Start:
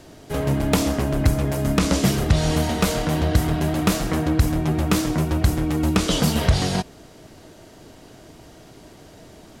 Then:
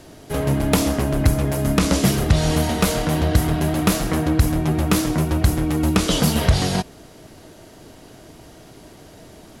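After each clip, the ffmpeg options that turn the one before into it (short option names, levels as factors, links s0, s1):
-af "equalizer=f=11000:w=5.9:g=8.5,volume=1.19"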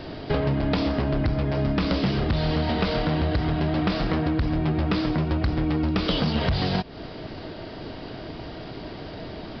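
-af "aresample=11025,asoftclip=type=hard:threshold=0.224,aresample=44100,acompressor=threshold=0.0398:ratio=10,volume=2.37"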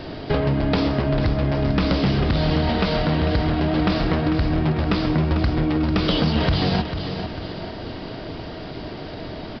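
-af "aecho=1:1:446|892|1338|1784|2230:0.355|0.163|0.0751|0.0345|0.0159,volume=1.41"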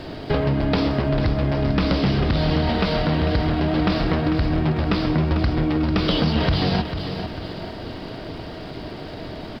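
-af "aeval=exprs='sgn(val(0))*max(abs(val(0))-0.00188,0)':c=same"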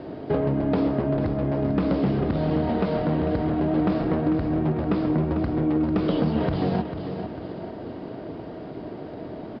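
-af "bandpass=f=360:t=q:w=0.62:csg=0"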